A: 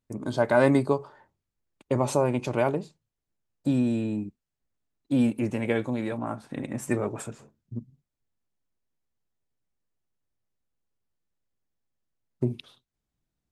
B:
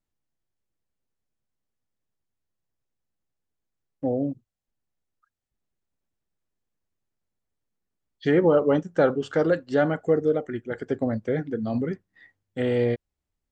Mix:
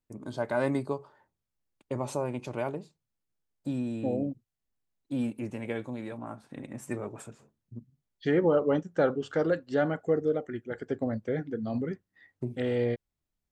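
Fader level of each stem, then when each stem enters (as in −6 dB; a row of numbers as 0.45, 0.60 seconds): −8.0, −5.0 decibels; 0.00, 0.00 seconds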